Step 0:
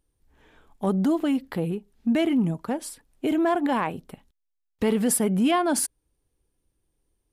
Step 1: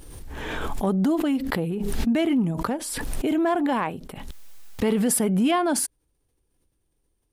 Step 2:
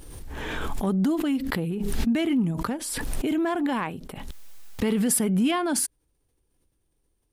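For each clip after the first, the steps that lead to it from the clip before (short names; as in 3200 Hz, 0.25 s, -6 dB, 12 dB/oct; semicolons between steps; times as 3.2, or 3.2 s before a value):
backwards sustainer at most 25 dB/s
dynamic EQ 650 Hz, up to -6 dB, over -36 dBFS, Q 0.92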